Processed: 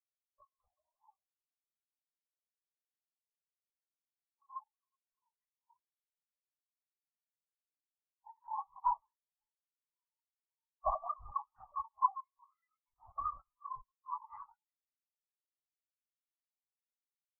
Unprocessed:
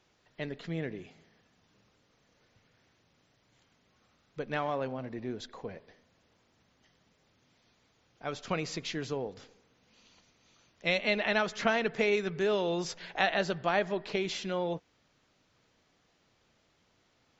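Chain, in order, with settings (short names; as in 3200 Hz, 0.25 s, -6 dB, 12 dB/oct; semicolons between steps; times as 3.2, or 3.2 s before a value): four-band scrambler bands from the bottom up 2341; limiter -22 dBFS, peak gain reduction 10.5 dB; on a send: tapped delay 60/373 ms -18.5/-17 dB; on the sum: harmonic-percussive split percussive -13 dB; HPF 470 Hz 24 dB/oct; tilt -2.5 dB/oct; compressor 12:1, threshold -49 dBFS, peak gain reduction 17.5 dB; LPF 2800 Hz 12 dB/oct; bell 1000 Hz +11 dB 0.52 oct; comb 5.5 ms, depth 97%; LPC vocoder at 8 kHz whisper; spectral expander 4:1; gain +17 dB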